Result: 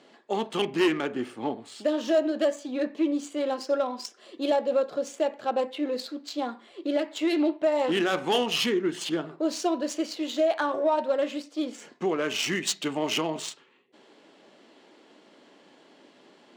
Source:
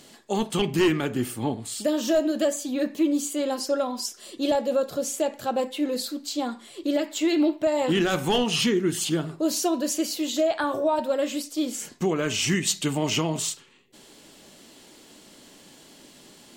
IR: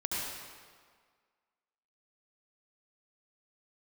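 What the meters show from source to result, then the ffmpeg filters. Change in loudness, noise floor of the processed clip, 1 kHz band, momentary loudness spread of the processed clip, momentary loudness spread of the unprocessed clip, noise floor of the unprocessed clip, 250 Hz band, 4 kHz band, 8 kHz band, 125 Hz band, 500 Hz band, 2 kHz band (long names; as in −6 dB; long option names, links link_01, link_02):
−2.5 dB, −57 dBFS, −0.5 dB, 9 LU, 7 LU, −51 dBFS, −3.5 dB, −2.5 dB, −8.5 dB, −11.5 dB, −1.0 dB, −1.0 dB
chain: -af "adynamicsmooth=sensitivity=2.5:basefreq=2600,highpass=310"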